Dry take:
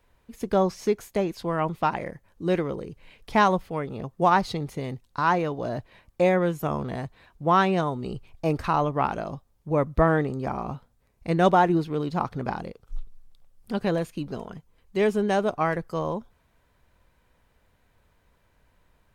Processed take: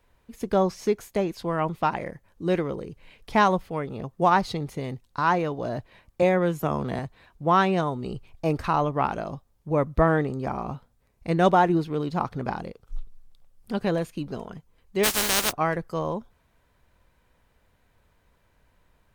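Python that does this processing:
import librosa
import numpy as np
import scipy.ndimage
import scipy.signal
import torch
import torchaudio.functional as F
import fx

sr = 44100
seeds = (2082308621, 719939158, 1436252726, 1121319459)

y = fx.band_squash(x, sr, depth_pct=40, at=(6.22, 6.99))
y = fx.spec_flatten(y, sr, power=0.2, at=(15.03, 15.51), fade=0.02)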